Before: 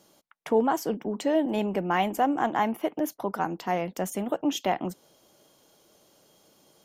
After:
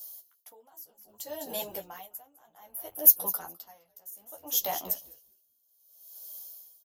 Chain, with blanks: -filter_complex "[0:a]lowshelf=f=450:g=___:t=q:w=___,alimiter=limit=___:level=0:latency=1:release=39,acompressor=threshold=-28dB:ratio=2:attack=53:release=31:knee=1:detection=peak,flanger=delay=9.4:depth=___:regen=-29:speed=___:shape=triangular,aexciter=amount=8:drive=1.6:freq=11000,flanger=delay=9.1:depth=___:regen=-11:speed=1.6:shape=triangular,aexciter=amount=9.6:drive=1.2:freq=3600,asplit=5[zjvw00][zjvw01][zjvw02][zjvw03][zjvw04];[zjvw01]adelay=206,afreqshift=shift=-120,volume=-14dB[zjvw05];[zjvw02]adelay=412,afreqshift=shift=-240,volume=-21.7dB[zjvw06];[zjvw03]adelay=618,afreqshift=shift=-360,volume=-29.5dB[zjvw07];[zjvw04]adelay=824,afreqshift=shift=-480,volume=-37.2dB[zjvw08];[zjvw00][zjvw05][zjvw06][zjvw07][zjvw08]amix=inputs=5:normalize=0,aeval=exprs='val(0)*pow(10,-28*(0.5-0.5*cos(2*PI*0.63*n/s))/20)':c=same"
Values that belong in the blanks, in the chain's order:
-8.5, 1.5, -14.5dB, 4.1, 0.36, 3.4